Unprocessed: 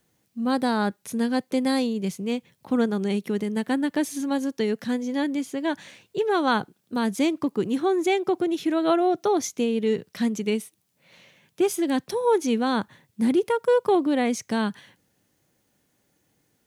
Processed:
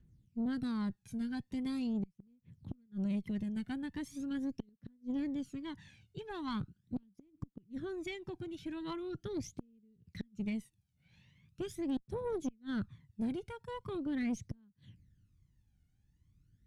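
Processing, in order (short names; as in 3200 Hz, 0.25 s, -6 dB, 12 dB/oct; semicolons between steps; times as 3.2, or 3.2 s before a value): phaser 0.41 Hz, delay 1.4 ms, feedback 68%; passive tone stack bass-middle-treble 6-0-2; compressor 2:1, threshold -40 dBFS, peak gain reduction 5 dB; RIAA curve playback; flipped gate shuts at -29 dBFS, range -36 dB; tube stage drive 34 dB, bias 0.4; gain +5 dB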